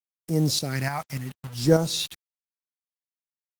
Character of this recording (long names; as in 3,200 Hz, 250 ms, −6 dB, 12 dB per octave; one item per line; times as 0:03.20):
phaser sweep stages 2, 0.74 Hz, lowest notch 350–2,500 Hz
a quantiser's noise floor 8 bits, dither none
tremolo saw up 3.4 Hz, depth 55%
Opus